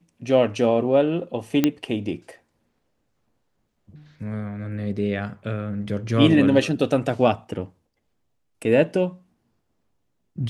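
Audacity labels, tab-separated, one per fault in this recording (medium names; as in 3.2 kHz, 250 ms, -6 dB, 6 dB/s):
1.640000	1.640000	pop -5 dBFS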